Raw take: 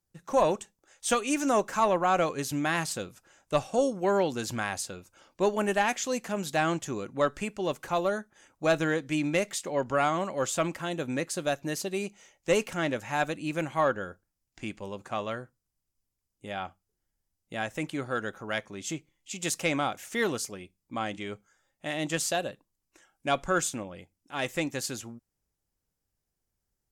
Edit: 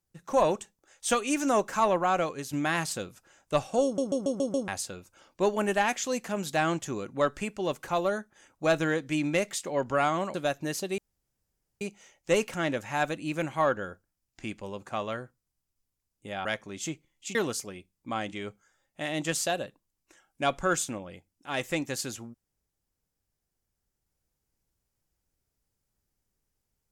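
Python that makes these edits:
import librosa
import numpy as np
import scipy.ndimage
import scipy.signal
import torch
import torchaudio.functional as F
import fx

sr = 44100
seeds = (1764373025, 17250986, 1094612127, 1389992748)

y = fx.edit(x, sr, fx.fade_out_to(start_s=1.98, length_s=0.55, floor_db=-6.5),
    fx.stutter_over(start_s=3.84, slice_s=0.14, count=6),
    fx.cut(start_s=10.34, length_s=1.02),
    fx.insert_room_tone(at_s=12.0, length_s=0.83),
    fx.cut(start_s=16.64, length_s=1.85),
    fx.cut(start_s=19.39, length_s=0.81), tone=tone)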